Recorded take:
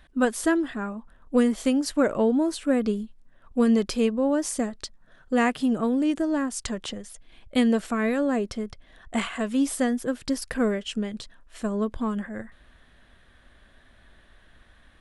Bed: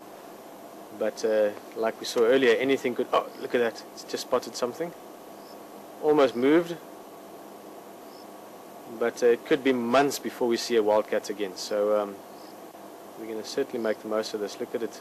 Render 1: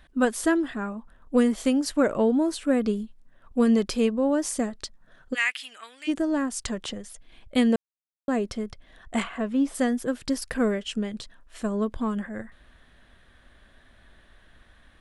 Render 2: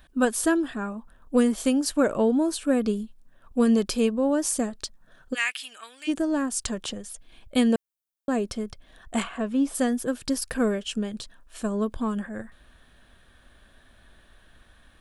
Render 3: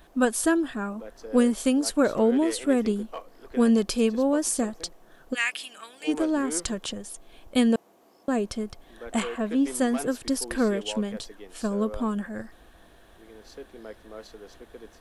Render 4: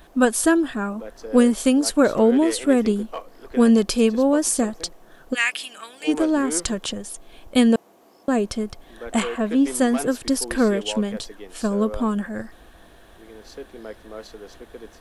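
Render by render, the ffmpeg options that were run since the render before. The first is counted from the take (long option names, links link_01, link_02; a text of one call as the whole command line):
ffmpeg -i in.wav -filter_complex "[0:a]asplit=3[link_01][link_02][link_03];[link_01]afade=type=out:start_time=5.33:duration=0.02[link_04];[link_02]highpass=frequency=2200:width_type=q:width=2.7,afade=type=in:start_time=5.33:duration=0.02,afade=type=out:start_time=6.07:duration=0.02[link_05];[link_03]afade=type=in:start_time=6.07:duration=0.02[link_06];[link_04][link_05][link_06]amix=inputs=3:normalize=0,asplit=3[link_07][link_08][link_09];[link_07]afade=type=out:start_time=9.22:duration=0.02[link_10];[link_08]lowpass=frequency=1500:poles=1,afade=type=in:start_time=9.22:duration=0.02,afade=type=out:start_time=9.74:duration=0.02[link_11];[link_09]afade=type=in:start_time=9.74:duration=0.02[link_12];[link_10][link_11][link_12]amix=inputs=3:normalize=0,asplit=3[link_13][link_14][link_15];[link_13]atrim=end=7.76,asetpts=PTS-STARTPTS,afade=type=out:start_time=7.756:duration=0.004:curve=hsin[link_16];[link_14]atrim=start=7.76:end=8.28,asetpts=PTS-STARTPTS,volume=0[link_17];[link_15]atrim=start=8.28,asetpts=PTS-STARTPTS,afade=type=in:duration=0.004:curve=hsin[link_18];[link_16][link_17][link_18]concat=n=3:v=0:a=1" out.wav
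ffmpeg -i in.wav -af "highshelf=frequency=9000:gain=10,bandreject=frequency=2000:width=8.9" out.wav
ffmpeg -i in.wav -i bed.wav -filter_complex "[1:a]volume=-14.5dB[link_01];[0:a][link_01]amix=inputs=2:normalize=0" out.wav
ffmpeg -i in.wav -af "volume=5dB" out.wav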